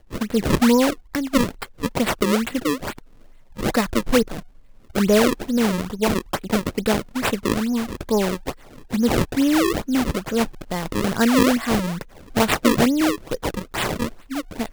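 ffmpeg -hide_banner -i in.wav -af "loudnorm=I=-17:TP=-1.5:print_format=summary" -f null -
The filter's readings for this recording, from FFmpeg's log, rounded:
Input Integrated:    -21.7 LUFS
Input True Peak:      -2.6 dBTP
Input LRA:             3.3 LU
Input Threshold:     -32.0 LUFS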